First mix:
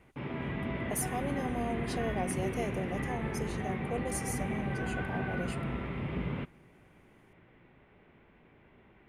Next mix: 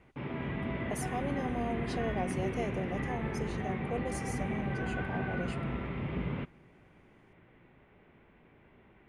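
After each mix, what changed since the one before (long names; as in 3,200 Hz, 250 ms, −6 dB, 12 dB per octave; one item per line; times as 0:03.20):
master: add high-frequency loss of the air 60 metres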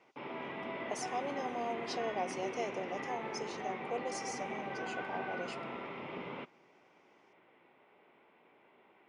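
speech: add high-shelf EQ 8,300 Hz +10.5 dB
master: add loudspeaker in its box 410–6,700 Hz, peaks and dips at 890 Hz +3 dB, 1,700 Hz −6 dB, 5,400 Hz +7 dB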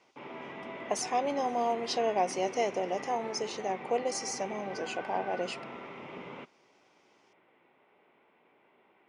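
speech +10.5 dB
reverb: off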